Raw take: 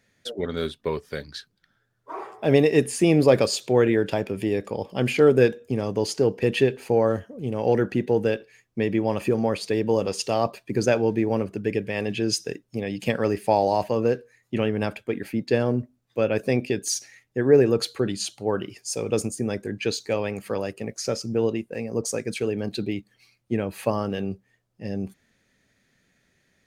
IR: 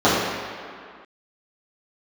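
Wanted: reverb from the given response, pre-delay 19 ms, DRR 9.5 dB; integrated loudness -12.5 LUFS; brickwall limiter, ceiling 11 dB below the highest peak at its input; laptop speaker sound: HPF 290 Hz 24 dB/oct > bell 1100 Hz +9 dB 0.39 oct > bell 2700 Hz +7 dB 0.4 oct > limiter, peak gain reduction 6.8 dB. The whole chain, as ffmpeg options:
-filter_complex "[0:a]alimiter=limit=-14.5dB:level=0:latency=1,asplit=2[a][b];[1:a]atrim=start_sample=2205,adelay=19[c];[b][c]afir=irnorm=-1:irlink=0,volume=-35dB[d];[a][d]amix=inputs=2:normalize=0,highpass=f=290:w=0.5412,highpass=f=290:w=1.3066,equalizer=f=1.1k:t=o:w=0.39:g=9,equalizer=f=2.7k:t=o:w=0.4:g=7,volume=15.5dB,alimiter=limit=-1dB:level=0:latency=1"

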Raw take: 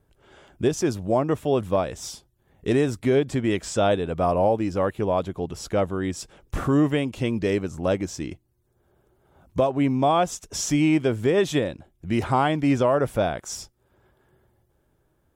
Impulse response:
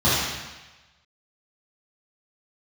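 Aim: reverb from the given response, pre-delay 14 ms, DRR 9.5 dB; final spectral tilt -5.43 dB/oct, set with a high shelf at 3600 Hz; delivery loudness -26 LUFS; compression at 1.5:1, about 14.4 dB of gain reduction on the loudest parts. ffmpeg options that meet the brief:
-filter_complex "[0:a]highshelf=f=3.6k:g=3.5,acompressor=threshold=-58dB:ratio=1.5,asplit=2[a][b];[1:a]atrim=start_sample=2205,adelay=14[c];[b][c]afir=irnorm=-1:irlink=0,volume=-29.5dB[d];[a][d]amix=inputs=2:normalize=0,volume=10.5dB"

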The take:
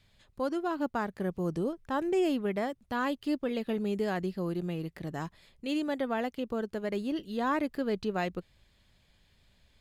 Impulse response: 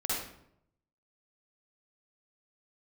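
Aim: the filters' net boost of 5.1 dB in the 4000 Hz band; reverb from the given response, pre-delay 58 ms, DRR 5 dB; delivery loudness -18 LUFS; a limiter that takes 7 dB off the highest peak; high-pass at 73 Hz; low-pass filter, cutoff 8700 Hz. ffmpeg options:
-filter_complex "[0:a]highpass=73,lowpass=8.7k,equalizer=f=4k:t=o:g=7,alimiter=level_in=1.5dB:limit=-24dB:level=0:latency=1,volume=-1.5dB,asplit=2[a][b];[1:a]atrim=start_sample=2205,adelay=58[c];[b][c]afir=irnorm=-1:irlink=0,volume=-11.5dB[d];[a][d]amix=inputs=2:normalize=0,volume=16dB"

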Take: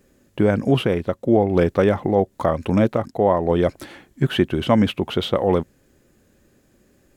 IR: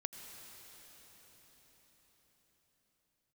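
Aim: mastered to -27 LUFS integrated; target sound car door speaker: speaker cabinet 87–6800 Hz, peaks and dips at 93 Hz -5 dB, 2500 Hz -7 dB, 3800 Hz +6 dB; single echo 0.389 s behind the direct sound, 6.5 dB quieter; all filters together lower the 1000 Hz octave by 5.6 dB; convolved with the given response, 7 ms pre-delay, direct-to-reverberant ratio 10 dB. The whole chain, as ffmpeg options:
-filter_complex "[0:a]equalizer=f=1k:t=o:g=-8,aecho=1:1:389:0.473,asplit=2[a][b];[1:a]atrim=start_sample=2205,adelay=7[c];[b][c]afir=irnorm=-1:irlink=0,volume=-8.5dB[d];[a][d]amix=inputs=2:normalize=0,highpass=87,equalizer=f=93:t=q:w=4:g=-5,equalizer=f=2.5k:t=q:w=4:g=-7,equalizer=f=3.8k:t=q:w=4:g=6,lowpass=f=6.8k:w=0.5412,lowpass=f=6.8k:w=1.3066,volume=-6dB"

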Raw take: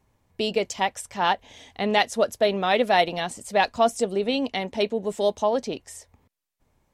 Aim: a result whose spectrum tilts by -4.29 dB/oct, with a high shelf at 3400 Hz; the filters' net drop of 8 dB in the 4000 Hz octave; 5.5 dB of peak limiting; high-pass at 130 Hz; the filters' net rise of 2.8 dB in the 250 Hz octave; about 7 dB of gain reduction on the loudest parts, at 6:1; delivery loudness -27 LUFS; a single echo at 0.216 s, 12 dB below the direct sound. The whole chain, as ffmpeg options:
-af "highpass=130,equalizer=f=250:t=o:g=4,highshelf=f=3.4k:g=-7,equalizer=f=4k:t=o:g=-6.5,acompressor=threshold=-23dB:ratio=6,alimiter=limit=-19dB:level=0:latency=1,aecho=1:1:216:0.251,volume=3.5dB"

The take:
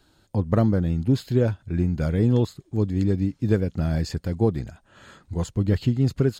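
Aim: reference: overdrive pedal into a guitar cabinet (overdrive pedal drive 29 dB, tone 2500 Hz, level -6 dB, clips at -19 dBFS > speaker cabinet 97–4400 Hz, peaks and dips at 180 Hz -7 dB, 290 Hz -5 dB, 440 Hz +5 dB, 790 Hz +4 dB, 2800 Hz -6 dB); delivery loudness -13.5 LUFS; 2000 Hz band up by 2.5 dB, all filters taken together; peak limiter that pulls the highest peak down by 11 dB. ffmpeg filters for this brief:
-filter_complex "[0:a]equalizer=f=2k:t=o:g=4,alimiter=limit=-19dB:level=0:latency=1,asplit=2[a][b];[b]highpass=f=720:p=1,volume=29dB,asoftclip=type=tanh:threshold=-19dB[c];[a][c]amix=inputs=2:normalize=0,lowpass=f=2.5k:p=1,volume=-6dB,highpass=97,equalizer=f=180:t=q:w=4:g=-7,equalizer=f=290:t=q:w=4:g=-5,equalizer=f=440:t=q:w=4:g=5,equalizer=f=790:t=q:w=4:g=4,equalizer=f=2.8k:t=q:w=4:g=-6,lowpass=f=4.4k:w=0.5412,lowpass=f=4.4k:w=1.3066,volume=14.5dB"

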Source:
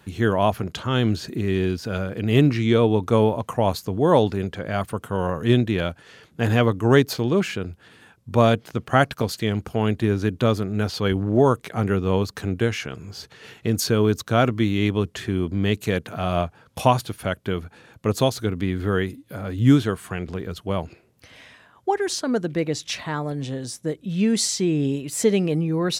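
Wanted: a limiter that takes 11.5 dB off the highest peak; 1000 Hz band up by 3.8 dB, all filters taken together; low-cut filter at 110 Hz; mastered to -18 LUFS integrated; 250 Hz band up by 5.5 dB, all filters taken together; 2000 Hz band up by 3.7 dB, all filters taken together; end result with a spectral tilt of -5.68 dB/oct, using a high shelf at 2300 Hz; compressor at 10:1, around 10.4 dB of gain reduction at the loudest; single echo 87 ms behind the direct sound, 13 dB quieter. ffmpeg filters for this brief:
-af "highpass=110,equalizer=f=250:t=o:g=7,equalizer=f=1k:t=o:g=4,equalizer=f=2k:t=o:g=5,highshelf=f=2.3k:g=-3.5,acompressor=threshold=-15dB:ratio=10,alimiter=limit=-14.5dB:level=0:latency=1,aecho=1:1:87:0.224,volume=8dB"

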